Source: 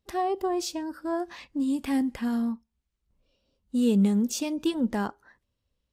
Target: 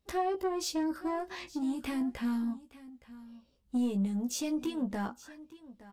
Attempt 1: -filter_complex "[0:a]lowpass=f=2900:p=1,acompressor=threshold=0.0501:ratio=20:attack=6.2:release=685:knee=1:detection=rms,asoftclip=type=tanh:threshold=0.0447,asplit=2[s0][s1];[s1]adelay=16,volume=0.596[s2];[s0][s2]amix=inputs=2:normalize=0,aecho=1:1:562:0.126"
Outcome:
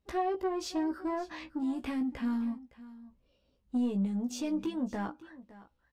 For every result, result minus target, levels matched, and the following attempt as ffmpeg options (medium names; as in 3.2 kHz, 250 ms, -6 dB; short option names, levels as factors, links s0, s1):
echo 305 ms early; 4 kHz band -4.0 dB
-filter_complex "[0:a]lowpass=f=2900:p=1,acompressor=threshold=0.0501:ratio=20:attack=6.2:release=685:knee=1:detection=rms,asoftclip=type=tanh:threshold=0.0447,asplit=2[s0][s1];[s1]adelay=16,volume=0.596[s2];[s0][s2]amix=inputs=2:normalize=0,aecho=1:1:867:0.126"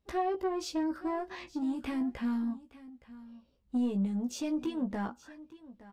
4 kHz band -4.0 dB
-filter_complex "[0:a]acompressor=threshold=0.0501:ratio=20:attack=6.2:release=685:knee=1:detection=rms,asoftclip=type=tanh:threshold=0.0447,asplit=2[s0][s1];[s1]adelay=16,volume=0.596[s2];[s0][s2]amix=inputs=2:normalize=0,aecho=1:1:867:0.126"